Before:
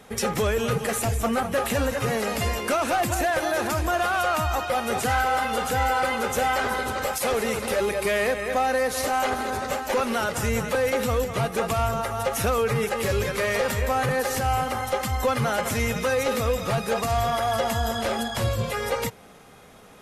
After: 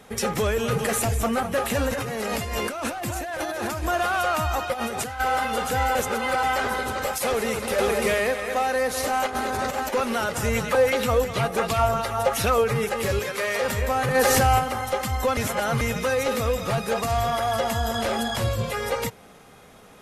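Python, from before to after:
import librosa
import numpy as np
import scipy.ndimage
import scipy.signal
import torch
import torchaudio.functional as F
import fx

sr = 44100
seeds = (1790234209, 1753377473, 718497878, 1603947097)

y = fx.env_flatten(x, sr, amount_pct=50, at=(0.72, 1.24))
y = fx.over_compress(y, sr, threshold_db=-29.0, ratio=-1.0, at=(1.89, 3.83))
y = fx.over_compress(y, sr, threshold_db=-30.0, ratio=-1.0, at=(4.72, 5.19), fade=0.02)
y = fx.echo_throw(y, sr, start_s=7.23, length_s=0.41, ms=550, feedback_pct=35, wet_db=-1.5)
y = fx.low_shelf(y, sr, hz=320.0, db=-6.0, at=(8.33, 8.76))
y = fx.over_compress(y, sr, threshold_db=-29.0, ratio=-0.5, at=(9.26, 9.92), fade=0.02)
y = fx.bell_lfo(y, sr, hz=2.8, low_hz=550.0, high_hz=4500.0, db=8, at=(10.45, 12.64))
y = fx.highpass(y, sr, hz=420.0, slope=6, at=(13.19, 13.62))
y = fx.env_flatten(y, sr, amount_pct=70, at=(14.14, 14.58), fade=0.02)
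y = fx.env_flatten(y, sr, amount_pct=50, at=(17.94, 18.36))
y = fx.edit(y, sr, fx.reverse_span(start_s=5.95, length_s=0.48),
    fx.reverse_span(start_s=15.37, length_s=0.44), tone=tone)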